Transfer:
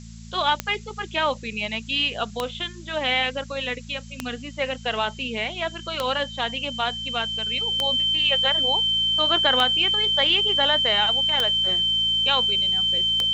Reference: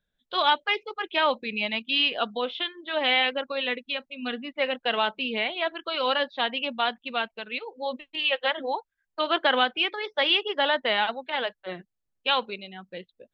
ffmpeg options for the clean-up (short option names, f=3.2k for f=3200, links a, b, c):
-af "adeclick=t=4,bandreject=f=56.1:t=h:w=4,bandreject=f=112.2:t=h:w=4,bandreject=f=168.3:t=h:w=4,bandreject=f=224.4:t=h:w=4,bandreject=f=3.1k:w=30,afftdn=nr=30:nf=-39"